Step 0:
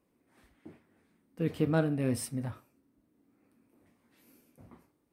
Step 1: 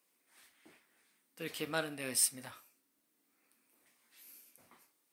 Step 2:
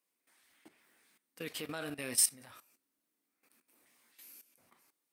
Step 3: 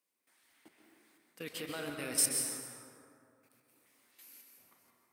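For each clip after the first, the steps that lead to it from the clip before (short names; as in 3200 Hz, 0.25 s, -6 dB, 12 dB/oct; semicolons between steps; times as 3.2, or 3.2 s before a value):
HPF 1400 Hz 6 dB/oct; high shelf 2300 Hz +11 dB
level quantiser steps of 15 dB; gain +5 dB
plate-style reverb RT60 2.4 s, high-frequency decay 0.45×, pre-delay 0.115 s, DRR 1 dB; gain -1.5 dB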